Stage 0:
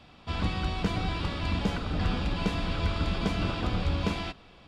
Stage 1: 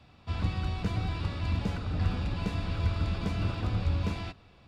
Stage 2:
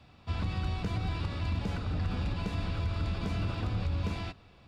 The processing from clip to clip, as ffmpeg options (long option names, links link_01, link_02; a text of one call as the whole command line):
ffmpeg -i in.wav -filter_complex "[0:a]equalizer=frequency=97:width=1.6:gain=10,bandreject=frequency=3200:width=13,acrossover=split=350[link_01][link_02];[link_02]asoftclip=type=hard:threshold=-28.5dB[link_03];[link_01][link_03]amix=inputs=2:normalize=0,volume=-5.5dB" out.wav
ffmpeg -i in.wav -af "alimiter=limit=-23.5dB:level=0:latency=1:release=66" out.wav